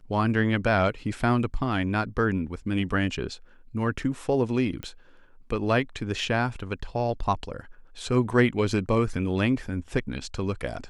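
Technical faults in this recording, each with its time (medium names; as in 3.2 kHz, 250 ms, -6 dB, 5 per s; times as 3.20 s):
4.83 s: pop -21 dBFS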